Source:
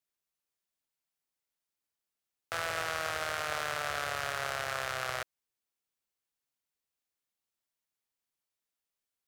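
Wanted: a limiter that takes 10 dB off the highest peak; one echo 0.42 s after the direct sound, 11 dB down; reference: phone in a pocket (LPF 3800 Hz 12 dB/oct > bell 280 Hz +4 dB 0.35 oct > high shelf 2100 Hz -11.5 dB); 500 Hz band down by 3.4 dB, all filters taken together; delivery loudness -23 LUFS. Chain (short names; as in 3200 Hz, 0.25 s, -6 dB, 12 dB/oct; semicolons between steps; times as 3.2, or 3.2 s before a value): bell 500 Hz -3.5 dB; limiter -26.5 dBFS; LPF 3800 Hz 12 dB/oct; bell 280 Hz +4 dB 0.35 oct; high shelf 2100 Hz -11.5 dB; echo 0.42 s -11 dB; gain +23.5 dB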